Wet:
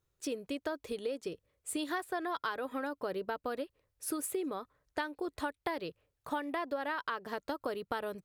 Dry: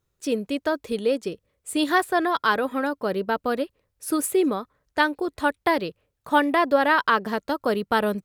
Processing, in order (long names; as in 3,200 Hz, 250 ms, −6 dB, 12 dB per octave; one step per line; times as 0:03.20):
downward compressor 10 to 1, threshold −27 dBFS, peak gain reduction 13.5 dB
parametric band 210 Hz −9.5 dB 0.31 octaves
level −5 dB